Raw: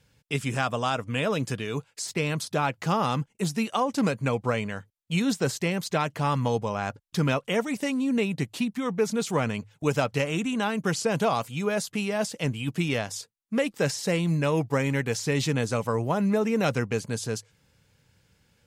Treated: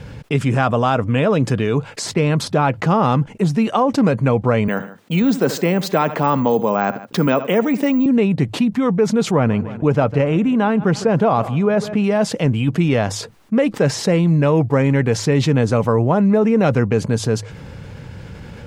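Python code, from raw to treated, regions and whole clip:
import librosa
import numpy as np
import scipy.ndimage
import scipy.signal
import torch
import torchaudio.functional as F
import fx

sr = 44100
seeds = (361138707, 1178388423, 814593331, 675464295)

y = fx.chain(x, sr, fx.highpass(hz=180.0, slope=24),
    fx.echo_feedback(ms=75, feedback_pct=28, wet_db=-22.0),
    fx.resample_bad(factor=2, down='filtered', up='zero_stuff'), at=(4.68, 8.06))
y = fx.chain(y, sr, fx.high_shelf(hz=3700.0, db=-10.0),
    fx.echo_feedback(ms=154, feedback_pct=42, wet_db=-23), at=(9.31, 12.04))
y = fx.lowpass(y, sr, hz=1000.0, slope=6)
y = fx.env_flatten(y, sr, amount_pct=50)
y = y * librosa.db_to_amplitude(8.5)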